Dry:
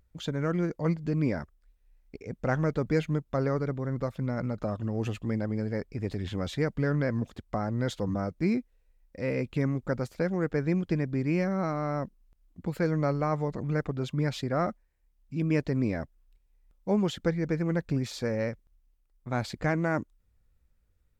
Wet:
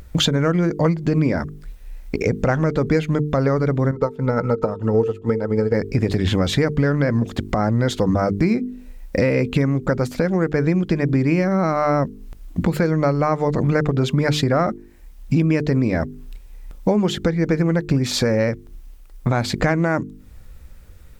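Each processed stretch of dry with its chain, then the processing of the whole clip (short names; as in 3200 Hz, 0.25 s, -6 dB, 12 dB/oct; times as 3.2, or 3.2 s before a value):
3.91–5.74 small resonant body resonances 460/900/1300 Hz, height 15 dB, ringing for 65 ms + upward expander 2.5:1, over -36 dBFS
whole clip: notches 50/100/150/200/250/300/350/400/450 Hz; compressor 10:1, threshold -42 dBFS; maximiser +33.5 dB; gain -6.5 dB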